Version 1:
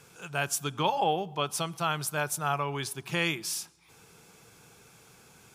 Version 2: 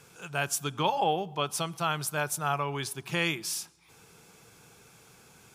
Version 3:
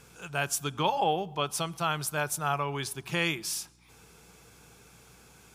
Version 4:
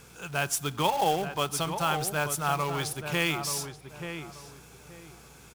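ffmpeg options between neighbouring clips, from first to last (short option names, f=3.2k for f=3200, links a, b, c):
-af anull
-af "aeval=exprs='val(0)+0.000794*(sin(2*PI*60*n/s)+sin(2*PI*2*60*n/s)/2+sin(2*PI*3*60*n/s)/3+sin(2*PI*4*60*n/s)/4+sin(2*PI*5*60*n/s)/5)':c=same"
-filter_complex "[0:a]asplit=2[a][b];[b]aeval=exprs='(mod(31.6*val(0)+1,2)-1)/31.6':c=same,volume=-12dB[c];[a][c]amix=inputs=2:normalize=0,acrusher=bits=3:mode=log:mix=0:aa=0.000001,asplit=2[d][e];[e]adelay=881,lowpass=f=1.6k:p=1,volume=-7.5dB,asplit=2[f][g];[g]adelay=881,lowpass=f=1.6k:p=1,volume=0.28,asplit=2[h][i];[i]adelay=881,lowpass=f=1.6k:p=1,volume=0.28[j];[d][f][h][j]amix=inputs=4:normalize=0,volume=1dB"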